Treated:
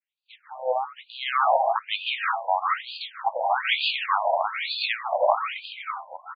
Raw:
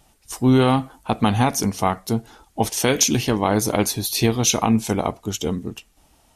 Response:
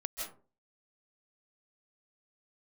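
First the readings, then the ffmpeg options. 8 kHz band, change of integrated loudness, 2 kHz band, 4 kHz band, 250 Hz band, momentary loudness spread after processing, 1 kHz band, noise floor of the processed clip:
below −40 dB, −5.0 dB, +2.5 dB, −2.0 dB, below −40 dB, 12 LU, +1.5 dB, −65 dBFS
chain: -filter_complex "[0:a]agate=range=-33dB:threshold=-46dB:ratio=3:detection=peak,acrossover=split=750|4800[link_01][link_02][link_03];[link_01]adelay=70[link_04];[link_02]adelay=660[link_05];[link_04][link_05][link_03]amix=inputs=3:normalize=0[link_06];[1:a]atrim=start_sample=2205,afade=type=out:start_time=0.36:duration=0.01,atrim=end_sample=16317[link_07];[link_06][link_07]afir=irnorm=-1:irlink=0,acrossover=split=3700[link_08][link_09];[link_09]aeval=exprs='max(val(0),0)':channel_layout=same[link_10];[link_08][link_10]amix=inputs=2:normalize=0,afftfilt=real='re*between(b*sr/1024,700*pow(3500/700,0.5+0.5*sin(2*PI*1.1*pts/sr))/1.41,700*pow(3500/700,0.5+0.5*sin(2*PI*1.1*pts/sr))*1.41)':imag='im*between(b*sr/1024,700*pow(3500/700,0.5+0.5*sin(2*PI*1.1*pts/sr))/1.41,700*pow(3500/700,0.5+0.5*sin(2*PI*1.1*pts/sr))*1.41)':win_size=1024:overlap=0.75,volume=7dB"

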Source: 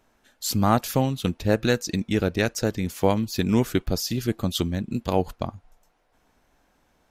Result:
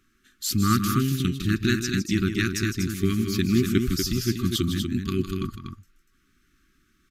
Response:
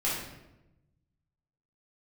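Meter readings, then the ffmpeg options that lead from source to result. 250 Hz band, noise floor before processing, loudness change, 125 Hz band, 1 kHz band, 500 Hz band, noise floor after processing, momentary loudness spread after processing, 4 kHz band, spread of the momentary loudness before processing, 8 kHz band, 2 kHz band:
+1.5 dB, −66 dBFS, 0.0 dB, +1.5 dB, −5.5 dB, −6.0 dB, −66 dBFS, 7 LU, +1.5 dB, 5 LU, +1.5 dB, +1.5 dB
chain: -af "afftfilt=real='re*(1-between(b*sr/4096,400,1100))':imag='im*(1-between(b*sr/4096,400,1100))':win_size=4096:overlap=0.75,aecho=1:1:157.4|242:0.355|0.501"

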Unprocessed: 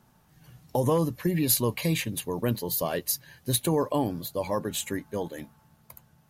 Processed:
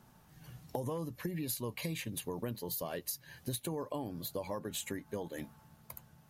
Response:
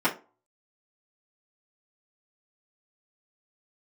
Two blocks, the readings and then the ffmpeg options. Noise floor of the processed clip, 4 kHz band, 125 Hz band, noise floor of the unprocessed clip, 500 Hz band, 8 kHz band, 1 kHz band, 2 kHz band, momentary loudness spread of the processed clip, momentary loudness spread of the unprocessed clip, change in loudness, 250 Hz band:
−63 dBFS, −10.5 dB, −12.0 dB, −62 dBFS, −11.5 dB, −11.5 dB, −12.0 dB, −9.5 dB, 14 LU, 9 LU, −11.5 dB, −11.5 dB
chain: -af "acompressor=threshold=-36dB:ratio=6"

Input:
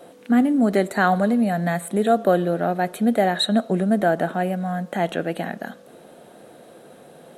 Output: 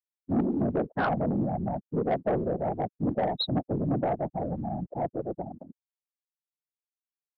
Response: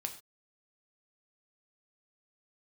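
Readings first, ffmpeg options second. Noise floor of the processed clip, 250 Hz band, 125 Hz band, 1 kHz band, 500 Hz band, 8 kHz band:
below −85 dBFS, −9.0 dB, −4.0 dB, −8.5 dB, −8.0 dB, below −40 dB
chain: -af "bandreject=frequency=1700:width=9.4,afwtdn=0.0398,afftfilt=real='re*gte(hypot(re,im),0.158)':imag='im*gte(hypot(re,im),0.158)':win_size=1024:overlap=0.75,afftfilt=real='hypot(re,im)*cos(2*PI*random(0))':imag='hypot(re,im)*sin(2*PI*random(1))':win_size=512:overlap=0.75,aresample=11025,asoftclip=type=tanh:threshold=-19.5dB,aresample=44100"

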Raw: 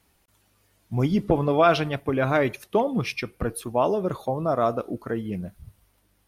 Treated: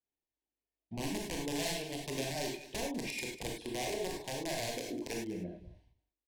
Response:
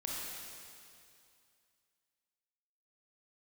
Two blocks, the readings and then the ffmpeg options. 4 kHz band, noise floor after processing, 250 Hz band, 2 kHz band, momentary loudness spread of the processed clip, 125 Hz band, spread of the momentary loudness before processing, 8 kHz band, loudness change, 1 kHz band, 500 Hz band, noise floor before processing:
−2.5 dB, below −85 dBFS, −13.0 dB, −10.0 dB, 5 LU, −16.5 dB, 11 LU, +3.0 dB, −13.5 dB, −17.5 dB, −16.0 dB, −66 dBFS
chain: -filter_complex "[0:a]lowpass=6200,agate=range=-27dB:threshold=-56dB:ratio=16:detection=peak,lowshelf=frequency=210:width_type=q:width=1.5:gain=-7,acompressor=threshold=-34dB:ratio=3,aeval=exprs='(mod(20*val(0)+1,2)-1)/20':channel_layout=same,adynamicsmooth=sensitivity=7:basefreq=4100,asuperstop=centerf=1300:order=4:qfactor=1.6,aecho=1:1:198:0.158[link_01];[1:a]atrim=start_sample=2205,afade=type=out:start_time=0.18:duration=0.01,atrim=end_sample=8379,asetrate=52920,aresample=44100[link_02];[link_01][link_02]afir=irnorm=-1:irlink=0,adynamicequalizer=threshold=0.00158:dfrequency=4100:dqfactor=0.7:tfrequency=4100:tqfactor=0.7:attack=5:release=100:ratio=0.375:range=3.5:mode=boostabove:tftype=highshelf"

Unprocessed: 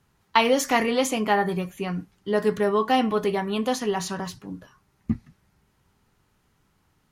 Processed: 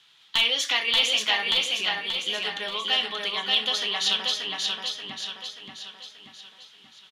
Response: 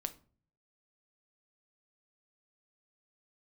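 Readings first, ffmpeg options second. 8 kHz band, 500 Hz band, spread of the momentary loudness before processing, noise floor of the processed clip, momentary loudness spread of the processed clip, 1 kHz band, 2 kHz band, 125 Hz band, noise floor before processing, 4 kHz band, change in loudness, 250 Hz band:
+0.5 dB, −13.5 dB, 12 LU, −56 dBFS, 16 LU, −9.0 dB, +3.0 dB, below −15 dB, −68 dBFS, +13.0 dB, +0.5 dB, −19.5 dB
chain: -filter_complex "[0:a]acompressor=threshold=-38dB:ratio=2,bandpass=frequency=3400:width_type=q:width=5.3:csg=0,aeval=exprs='clip(val(0),-1,0.0178)':channel_layout=same,aecho=1:1:582|1164|1746|2328|2910|3492:0.708|0.347|0.17|0.0833|0.0408|0.02[link_01];[1:a]atrim=start_sample=2205,atrim=end_sample=3528[link_02];[link_01][link_02]afir=irnorm=-1:irlink=0,alimiter=level_in=35dB:limit=-1dB:release=50:level=0:latency=1,volume=-7.5dB"

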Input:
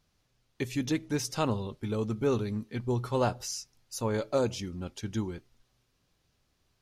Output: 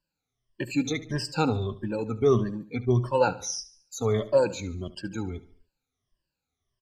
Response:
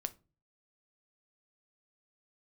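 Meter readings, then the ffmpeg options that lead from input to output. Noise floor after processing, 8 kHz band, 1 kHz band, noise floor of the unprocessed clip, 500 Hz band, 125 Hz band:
below −85 dBFS, +2.5 dB, +4.5 dB, −74 dBFS, +6.0 dB, +4.0 dB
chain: -filter_complex "[0:a]afftfilt=real='re*pow(10,20/40*sin(2*PI*(1.3*log(max(b,1)*sr/1024/100)/log(2)-(-1.6)*(pts-256)/sr)))':imag='im*pow(10,20/40*sin(2*PI*(1.3*log(max(b,1)*sr/1024/100)/log(2)-(-1.6)*(pts-256)/sr)))':win_size=1024:overlap=0.75,afftdn=noise_reduction=15:noise_floor=-44,aecho=1:1:72|144|216|288:0.141|0.0607|0.0261|0.0112,acrossover=split=120|7200[link_01][link_02][link_03];[link_03]acompressor=threshold=-55dB:ratio=6[link_04];[link_01][link_02][link_04]amix=inputs=3:normalize=0"

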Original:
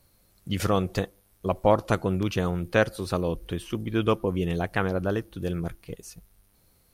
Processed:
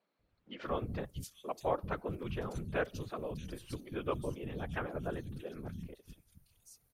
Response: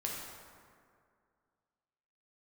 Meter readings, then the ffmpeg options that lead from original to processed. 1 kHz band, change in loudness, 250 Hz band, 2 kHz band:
−11.0 dB, −12.5 dB, −14.0 dB, −12.0 dB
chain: -filter_complex "[0:a]afftfilt=real='hypot(re,im)*cos(2*PI*random(0))':imag='hypot(re,im)*sin(2*PI*random(1))':win_size=512:overlap=0.75,acrossover=split=230|3700[link_01][link_02][link_03];[link_01]adelay=190[link_04];[link_03]adelay=630[link_05];[link_04][link_02][link_05]amix=inputs=3:normalize=0,volume=-5.5dB"

